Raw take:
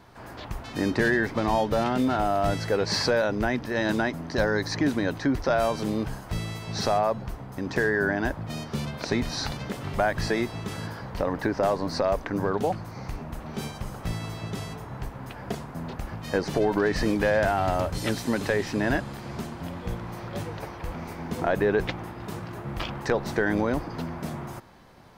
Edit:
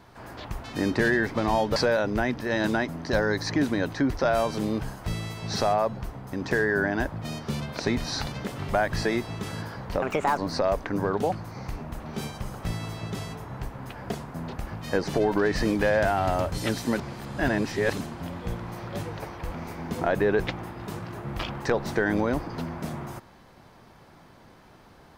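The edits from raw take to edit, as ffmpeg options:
ffmpeg -i in.wav -filter_complex "[0:a]asplit=6[link_01][link_02][link_03][link_04][link_05][link_06];[link_01]atrim=end=1.762[link_07];[link_02]atrim=start=3.008:end=11.274[link_08];[link_03]atrim=start=11.27:end=11.78,asetpts=PTS-STARTPTS,asetrate=63063,aresample=44100[link_09];[link_04]atrim=start=11.776:end=18.382[link_10];[link_05]atrim=start=18.378:end=19.412,asetpts=PTS-STARTPTS,areverse[link_11];[link_06]atrim=start=19.408[link_12];[link_07][link_08]acrossfade=duration=0.004:curve1=hsin:curve2=hsin[link_13];[link_13][link_09]acrossfade=duration=0.004:curve1=hsin:curve2=hsin[link_14];[link_14][link_10]acrossfade=duration=0.004:curve1=hsin:curve2=hsin[link_15];[link_15][link_11]acrossfade=duration=0.004:curve1=hsin:curve2=hsin[link_16];[link_16][link_12]acrossfade=duration=0.004:curve1=hsin:curve2=hsin" out.wav

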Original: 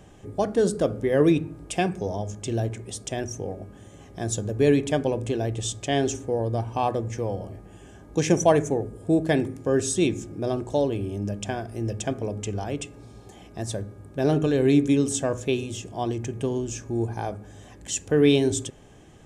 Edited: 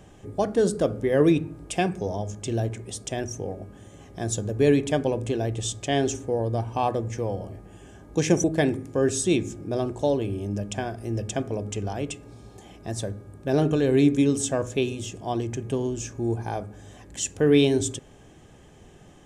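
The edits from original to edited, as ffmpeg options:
ffmpeg -i in.wav -filter_complex "[0:a]asplit=2[link_01][link_02];[link_01]atrim=end=8.442[link_03];[link_02]atrim=start=9.148[link_04];[link_03][link_04]acrossfade=duration=0.004:curve1=hsin:curve2=hsin" out.wav

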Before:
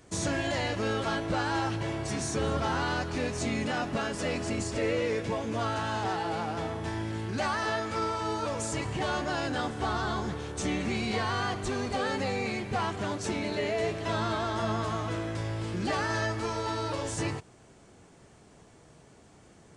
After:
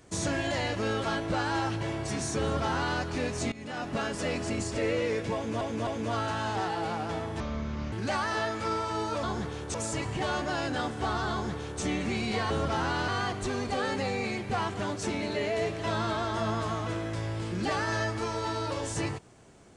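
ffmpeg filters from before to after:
ffmpeg -i in.wav -filter_complex "[0:a]asplit=10[link_01][link_02][link_03][link_04][link_05][link_06][link_07][link_08][link_09][link_10];[link_01]atrim=end=3.52,asetpts=PTS-STARTPTS,afade=type=out:start_time=3.516:duration=0.004:curve=hsin:silence=0.105925[link_11];[link_02]atrim=start=3.52:end=5.612,asetpts=PTS-STARTPTS,afade=type=in:duration=0.48:silence=0.105925[link_12];[link_03]atrim=start=5.348:end=5.612[link_13];[link_04]atrim=start=5.348:end=6.884[link_14];[link_05]atrim=start=6.88:end=7.23,asetpts=PTS-STARTPTS,asetrate=29547,aresample=44100,atrim=end_sample=23037,asetpts=PTS-STARTPTS[link_15];[link_06]atrim=start=7.226:end=8.542[link_16];[link_07]atrim=start=10.108:end=10.622[link_17];[link_08]atrim=start=8.538:end=11.302[link_18];[link_09]atrim=start=2.418:end=3.002[link_19];[link_10]atrim=start=11.298[link_20];[link_11][link_12]concat=n=2:v=0:a=1[link_21];[link_21][link_13]acrossfade=duration=0.004:curve1=hsin:curve2=hsin[link_22];[link_22][link_14]acrossfade=duration=0.004:curve1=hsin:curve2=hsin[link_23];[link_23][link_15]acrossfade=duration=0.004:curve1=hsin:curve2=hsin[link_24];[link_24][link_16]acrossfade=duration=0.004:curve1=hsin:curve2=hsin[link_25];[link_25][link_17]acrossfade=duration=0.004:curve1=hsin:curve2=hsin[link_26];[link_26][link_18]acrossfade=duration=0.004:curve1=hsin:curve2=hsin[link_27];[link_27][link_19]acrossfade=duration=0.004:curve1=hsin:curve2=hsin[link_28];[link_28][link_20]acrossfade=duration=0.004:curve1=hsin:curve2=hsin" out.wav

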